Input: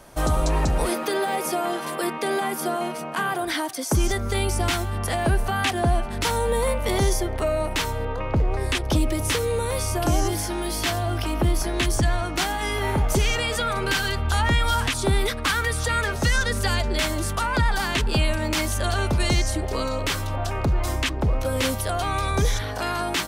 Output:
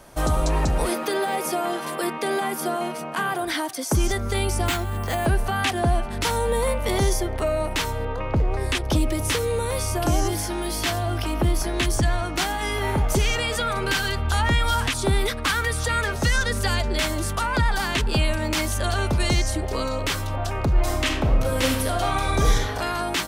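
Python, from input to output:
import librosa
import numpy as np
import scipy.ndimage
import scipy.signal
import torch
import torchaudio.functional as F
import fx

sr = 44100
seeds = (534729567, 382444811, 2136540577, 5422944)

y = fx.resample_bad(x, sr, factor=4, down='filtered', up='hold', at=(4.66, 5.26))
y = fx.reverb_throw(y, sr, start_s=20.72, length_s=1.98, rt60_s=0.81, drr_db=2.0)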